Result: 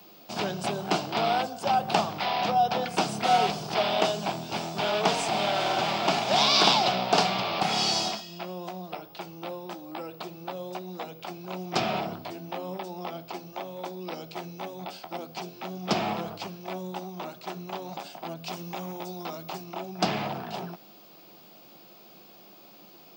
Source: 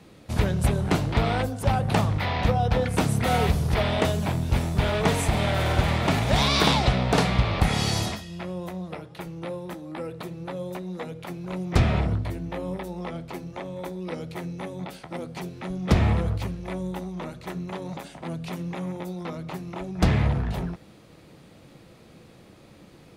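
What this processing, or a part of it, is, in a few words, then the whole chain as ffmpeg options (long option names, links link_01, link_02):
old television with a line whistle: -filter_complex "[0:a]highpass=frequency=210:width=0.5412,highpass=frequency=210:width=1.3066,equalizer=frequency=260:width_type=q:width=4:gain=-9,equalizer=frequency=490:width_type=q:width=4:gain=-7,equalizer=frequency=730:width_type=q:width=4:gain=6,equalizer=frequency=1900:width_type=q:width=4:gain=-8,equalizer=frequency=2900:width_type=q:width=4:gain=4,equalizer=frequency=5000:width_type=q:width=4:gain=8,lowpass=frequency=7800:width=0.5412,lowpass=frequency=7800:width=1.3066,aeval=exprs='val(0)+0.00251*sin(2*PI*15625*n/s)':channel_layout=same,asettb=1/sr,asplit=3[link_01][link_02][link_03];[link_01]atrim=end=18.344[link_04];[link_02]atrim=start=18.34:end=19.64,asetpts=PTS-STARTPTS,afade=type=in:duration=0.004:curve=qsin,afade=type=out:start_time=1.296:duration=0.004:curve=qsin,adynamicequalizer=threshold=0.00178:dfrequency=5000:dqfactor=0.7:tfrequency=5000:tqfactor=0.7:attack=5:release=100:ratio=0.375:range=3:mode=boostabove:tftype=highshelf[link_05];[link_03]atrim=start=19.636[link_06];[link_04][link_05]acrossfade=duration=0.004:curve1=hsin:curve2=qsin[link_07];[link_07][link_06]acrossfade=duration=0.004:curve1=qsin:curve2=hsin"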